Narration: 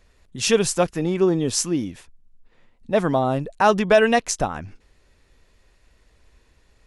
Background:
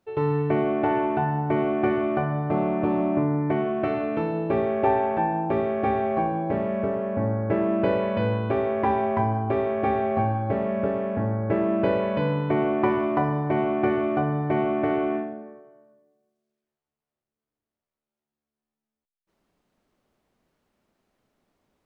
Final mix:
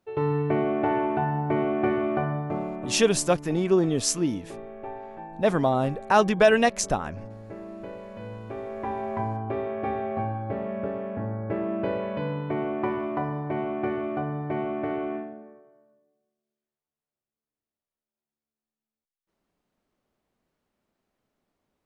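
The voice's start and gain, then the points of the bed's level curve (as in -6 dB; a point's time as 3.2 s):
2.50 s, -2.5 dB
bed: 2.29 s -1.5 dB
3.2 s -16.5 dB
8.04 s -16.5 dB
9.21 s -5.5 dB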